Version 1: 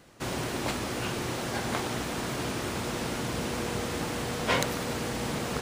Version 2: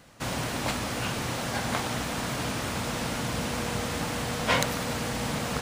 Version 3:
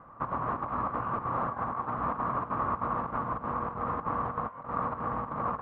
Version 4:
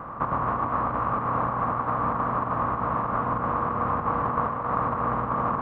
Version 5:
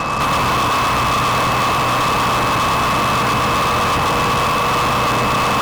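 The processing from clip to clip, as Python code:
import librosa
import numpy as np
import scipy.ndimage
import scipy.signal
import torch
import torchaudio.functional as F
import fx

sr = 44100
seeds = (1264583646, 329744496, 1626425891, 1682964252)

y1 = fx.peak_eq(x, sr, hz=370.0, db=-9.0, octaves=0.45)
y1 = y1 * 10.0 ** (2.5 / 20.0)
y2 = fx.over_compress(y1, sr, threshold_db=-32.0, ratio=-0.5)
y2 = fx.chopper(y2, sr, hz=3.2, depth_pct=60, duty_pct=80)
y2 = fx.ladder_lowpass(y2, sr, hz=1200.0, resonance_pct=80)
y2 = y2 * 10.0 ** (8.5 / 20.0)
y3 = fx.bin_compress(y2, sr, power=0.6)
y3 = fx.rider(y3, sr, range_db=10, speed_s=0.5)
y3 = fx.echo_split(y3, sr, split_hz=390.0, low_ms=100, high_ms=267, feedback_pct=52, wet_db=-5.5)
y3 = y3 * 10.0 ** (2.0 / 20.0)
y4 = y3 + 10.0 ** (-3.5 / 20.0) * np.pad(y3, (int(115 * sr / 1000.0), 0))[:len(y3)]
y4 = fx.fuzz(y4, sr, gain_db=37.0, gate_db=-44.0)
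y4 = y4 + 10.0 ** (-26.0 / 20.0) * np.sin(2.0 * np.pi * 2600.0 * np.arange(len(y4)) / sr)
y4 = y4 * 10.0 ** (-2.0 / 20.0)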